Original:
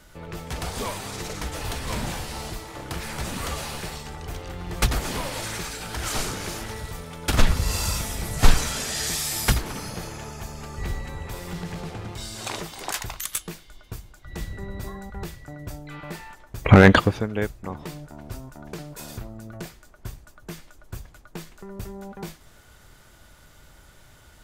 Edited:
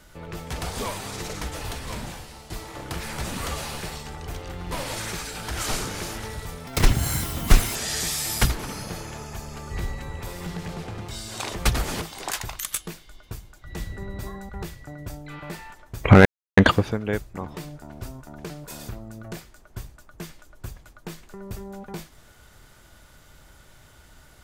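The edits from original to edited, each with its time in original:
0:01.37–0:02.50: fade out, to −13 dB
0:04.72–0:05.18: move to 0:12.62
0:07.13–0:08.82: play speed 156%
0:16.86: splice in silence 0.32 s

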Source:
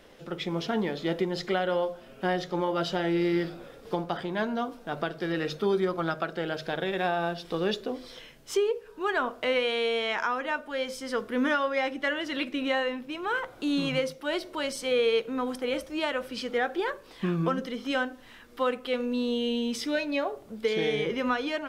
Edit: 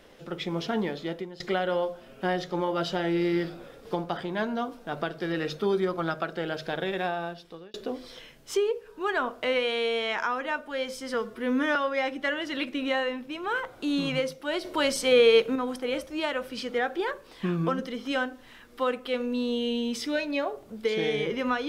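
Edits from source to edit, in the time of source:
0:00.85–0:01.40: fade out, to −18 dB
0:06.90–0:07.74: fade out
0:11.14–0:11.55: time-stretch 1.5×
0:14.44–0:15.35: clip gain +6 dB

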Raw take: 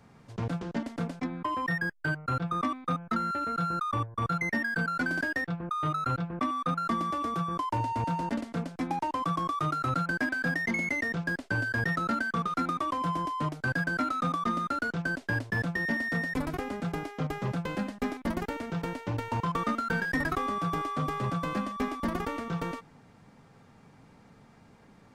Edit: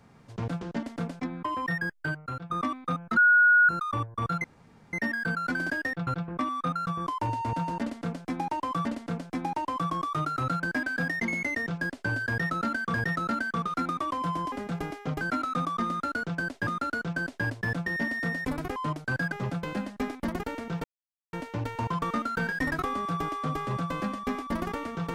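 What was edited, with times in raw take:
0:02.00–0:02.50: fade out, to −11.5 dB
0:03.17–0:03.69: beep over 1,450 Hz −15.5 dBFS
0:04.44: splice in room tone 0.49 s
0:05.58–0:06.09: remove
0:06.89–0:07.38: remove
0:08.31–0:09.36: repeat, 2 plays
0:11.74–0:12.40: repeat, 2 plays
0:13.32–0:13.88: swap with 0:16.65–0:17.34
0:14.56–0:15.34: repeat, 2 plays
0:18.86: splice in silence 0.49 s

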